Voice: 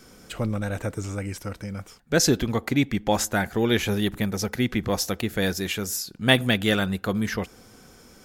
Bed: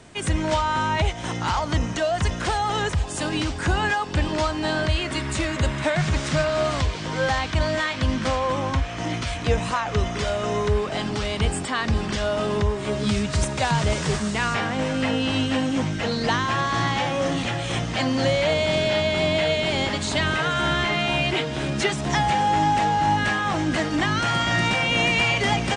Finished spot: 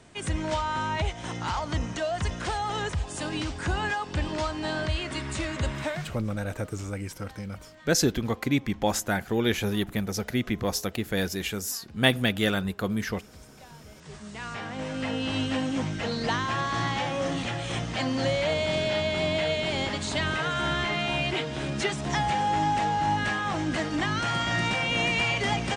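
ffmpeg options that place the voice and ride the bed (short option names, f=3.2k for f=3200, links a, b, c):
-filter_complex "[0:a]adelay=5750,volume=-3dB[a];[1:a]volume=17dB,afade=t=out:st=5.8:d=0.38:silence=0.0794328,afade=t=in:st=13.95:d=1.48:silence=0.0707946[b];[a][b]amix=inputs=2:normalize=0"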